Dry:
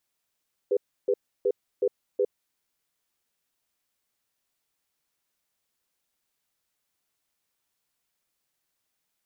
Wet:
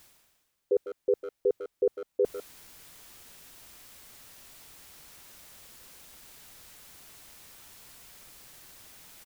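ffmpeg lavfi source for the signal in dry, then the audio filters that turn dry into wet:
-f lavfi -i "aevalsrc='0.0708*(sin(2*PI*403*t)+sin(2*PI*495*t))*clip(min(mod(t,0.37),0.06-mod(t,0.37))/0.005,0,1)':d=1.56:s=44100"
-filter_complex "[0:a]lowshelf=f=130:g=8,areverse,acompressor=mode=upward:threshold=-29dB:ratio=2.5,areverse,asplit=2[a][b];[b]adelay=150,highpass=300,lowpass=3.4k,asoftclip=type=hard:threshold=-23dB,volume=-10dB[c];[a][c]amix=inputs=2:normalize=0"

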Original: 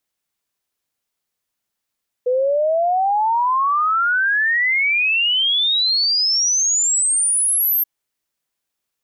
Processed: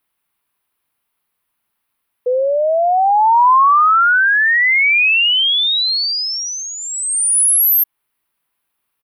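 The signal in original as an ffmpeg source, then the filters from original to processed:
-f lavfi -i "aevalsrc='0.188*clip(min(t,5.58-t)/0.01,0,1)*sin(2*PI*490*5.58/log(13000/490)*(exp(log(13000/490)*t/5.58)-1))':d=5.58:s=44100"
-filter_complex "[0:a]firequalizer=gain_entry='entry(340,0);entry(560,-3);entry(1000,6);entry(1700,1);entry(2500,2);entry(6900,-16);entry(10000,2)':delay=0.05:min_phase=1,asplit=2[a][b];[b]alimiter=limit=-19.5dB:level=0:latency=1:release=191,volume=-0.5dB[c];[a][c]amix=inputs=2:normalize=0"

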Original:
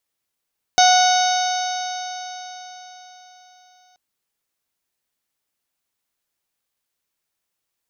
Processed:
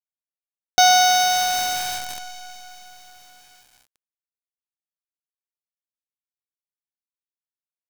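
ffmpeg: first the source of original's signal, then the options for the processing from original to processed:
-f lavfi -i "aevalsrc='0.282*pow(10,-3*t/4.29)*sin(2*PI*731.77*t)+0.0944*pow(10,-3*t/4.29)*sin(2*PI*1468.13*t)+0.0562*pow(10,-3*t/4.29)*sin(2*PI*2213.63*t)+0.0473*pow(10,-3*t/4.29)*sin(2*PI*2972.72*t)+0.119*pow(10,-3*t/4.29)*sin(2*PI*3749.72*t)+0.0596*pow(10,-3*t/4.29)*sin(2*PI*4548.77*t)+0.075*pow(10,-3*t/4.29)*sin(2*PI*5373.82*t)+0.112*pow(10,-3*t/4.29)*sin(2*PI*6228.6*t)':d=3.18:s=44100"
-af "acrusher=bits=5:dc=4:mix=0:aa=0.000001"

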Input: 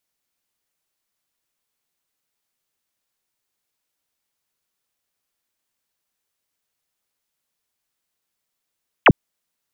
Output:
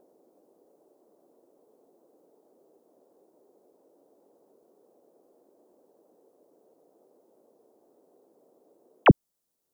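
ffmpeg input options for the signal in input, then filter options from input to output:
-f lavfi -i "aevalsrc='0.501*clip(t/0.002,0,1)*clip((0.05-t)/0.002,0,1)*sin(2*PI*3400*0.05/log(94/3400)*(exp(log(94/3400)*t/0.05)-1))':d=0.05:s=44100"
-filter_complex "[0:a]equalizer=f=2.2k:w=0.68:g=-12,acrossover=split=380|480[a][b][c];[b]acompressor=mode=upward:threshold=-29dB:ratio=2.5[d];[a][d][c]amix=inputs=3:normalize=0"

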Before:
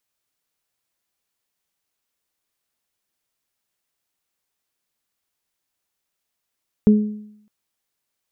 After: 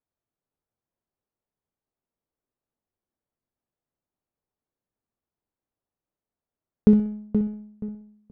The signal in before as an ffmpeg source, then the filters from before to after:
-f lavfi -i "aevalsrc='0.447*pow(10,-3*t/0.73)*sin(2*PI*211*t)+0.141*pow(10,-3*t/0.52)*sin(2*PI*422*t)':d=0.61:s=44100"
-filter_complex "[0:a]asplit=2[a][b];[b]adelay=476,lowpass=f=830:p=1,volume=-7dB,asplit=2[c][d];[d]adelay=476,lowpass=f=830:p=1,volume=0.32,asplit=2[e][f];[f]adelay=476,lowpass=f=830:p=1,volume=0.32,asplit=2[g][h];[h]adelay=476,lowpass=f=830:p=1,volume=0.32[i];[c][e][g][i]amix=inputs=4:normalize=0[j];[a][j]amix=inputs=2:normalize=0,adynamicsmooth=sensitivity=6.5:basefreq=850,asplit=2[k][l];[l]aecho=0:1:63|126|189|252:0.282|0.093|0.0307|0.0101[m];[k][m]amix=inputs=2:normalize=0"

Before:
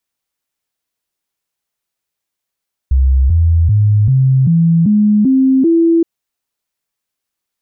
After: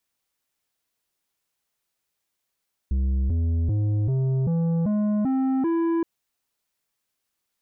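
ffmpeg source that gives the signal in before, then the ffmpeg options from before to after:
-f lavfi -i "aevalsrc='0.447*clip(min(mod(t,0.39),0.39-mod(t,0.39))/0.005,0,1)*sin(2*PI*66*pow(2,floor(t/0.39)/3)*mod(t,0.39))':d=3.12:s=44100"
-af "alimiter=limit=-13.5dB:level=0:latency=1:release=15,asoftclip=type=tanh:threshold=-21dB"

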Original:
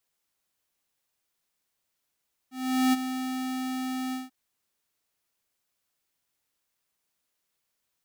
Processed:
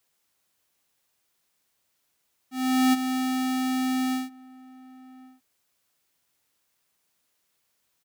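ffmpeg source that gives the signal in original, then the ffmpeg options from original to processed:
-f lavfi -i "aevalsrc='0.0891*(2*lt(mod(258*t,1),0.5)-1)':d=1.789:s=44100,afade=t=in:d=0.42,afade=t=out:st=0.42:d=0.025:silence=0.299,afade=t=out:st=1.62:d=0.169"
-filter_complex "[0:a]highpass=47,asplit=2[a][b];[b]acompressor=threshold=-32dB:ratio=6,volume=0.5dB[c];[a][c]amix=inputs=2:normalize=0,asplit=2[d][e];[e]adelay=1108,volume=-21dB,highshelf=f=4k:g=-24.9[f];[d][f]amix=inputs=2:normalize=0"

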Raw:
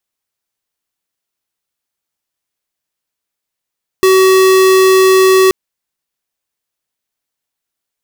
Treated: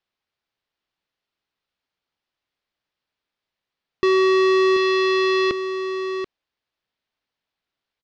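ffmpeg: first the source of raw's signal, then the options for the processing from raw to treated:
-f lavfi -i "aevalsrc='0.422*(2*lt(mod(378*t,1),0.5)-1)':d=1.48:s=44100"
-filter_complex "[0:a]asoftclip=type=tanh:threshold=-16dB,lowpass=f=4.5k:w=0.5412,lowpass=f=4.5k:w=1.3066,asplit=2[a][b];[b]aecho=0:1:734:0.335[c];[a][c]amix=inputs=2:normalize=0"

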